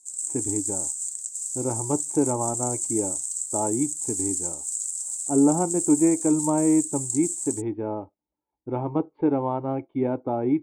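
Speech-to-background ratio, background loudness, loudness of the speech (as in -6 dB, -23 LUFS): 1.5 dB, -27.5 LUFS, -26.0 LUFS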